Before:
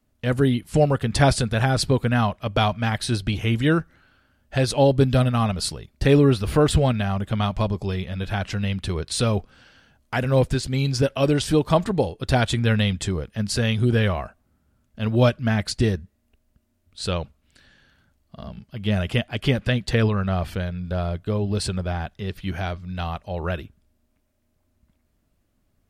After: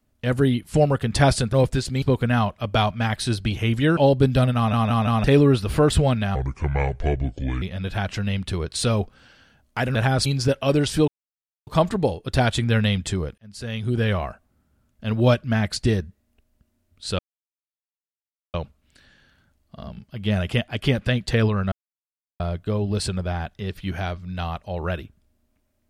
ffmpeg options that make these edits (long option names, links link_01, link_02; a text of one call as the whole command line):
ffmpeg -i in.wav -filter_complex "[0:a]asplit=17[link_01][link_02][link_03][link_04][link_05][link_06][link_07][link_08][link_09][link_10][link_11][link_12][link_13][link_14][link_15][link_16][link_17];[link_01]atrim=end=1.532[link_18];[link_02]atrim=start=10.308:end=10.802[link_19];[link_03]atrim=start=1.838:end=3.792[link_20];[link_04]atrim=start=4.748:end=5.512[link_21];[link_05]atrim=start=5.338:end=5.512[link_22];[link_06]atrim=start=5.338:end=5.512[link_23];[link_07]atrim=start=5.338:end=5.512[link_24];[link_08]atrim=start=6.018:end=7.134[link_25];[link_09]atrim=start=7.13:end=7.98,asetpts=PTS-STARTPTS,asetrate=29547,aresample=44100[link_26];[link_10]atrim=start=7.976:end=10.312[link_27];[link_11]atrim=start=1.528:end=1.842[link_28];[link_12]atrim=start=10.798:end=11.62,asetpts=PTS-STARTPTS,afade=type=out:start_time=0.818:duration=0.004:curve=hsin,apad=pad_dur=0.59[link_29];[link_13]atrim=start=11.62:end=13.33,asetpts=PTS-STARTPTS,afade=type=in:duration=0.004:curve=hsin,afade=type=out:start_time=1.706:duration=0.004:curve=hsin[link_30];[link_14]atrim=start=13.33:end=17.14,asetpts=PTS-STARTPTS,afade=type=in:duration=0.83,afade=type=out:start_time=3.806:duration=0.004:curve=hsin,apad=pad_dur=1.35[link_31];[link_15]atrim=start=17.14:end=20.32,asetpts=PTS-STARTPTS,afade=type=in:duration=0.004:curve=hsin,afade=type=out:start_time=3.176:duration=0.004:curve=hsin[link_32];[link_16]atrim=start=20.32:end=21,asetpts=PTS-STARTPTS,volume=0[link_33];[link_17]atrim=start=21,asetpts=PTS-STARTPTS,afade=type=in:duration=0.004:curve=hsin[link_34];[link_18][link_19]acrossfade=duration=0.004:curve1=hsin:curve2=hsin[link_35];[link_35][link_20]acrossfade=duration=0.004:curve1=hsin:curve2=hsin[link_36];[link_36][link_21]acrossfade=duration=0.004:curve1=hsin:curve2=hsin[link_37];[link_37][link_22]acrossfade=duration=0.004:curve1=hsin:curve2=hsin[link_38];[link_38][link_23]acrossfade=duration=0.004:curve1=hsin:curve2=hsin[link_39];[link_39][link_24]acrossfade=duration=0.004:curve1=hsin:curve2=hsin[link_40];[link_40][link_25]acrossfade=duration=0.004:curve1=hsin:curve2=hsin[link_41];[link_41][link_26]acrossfade=duration=0.004:curve1=hsin:curve2=hsin[link_42];[link_42][link_27]acrossfade=duration=0.004:curve1=hsin:curve2=hsin[link_43];[link_43][link_28]acrossfade=duration=0.004:curve1=hsin:curve2=hsin[link_44];[link_29][link_30][link_31][link_32][link_33][link_34]concat=n=6:v=0:a=1[link_45];[link_44][link_45]acrossfade=duration=0.004:curve1=hsin:curve2=hsin" out.wav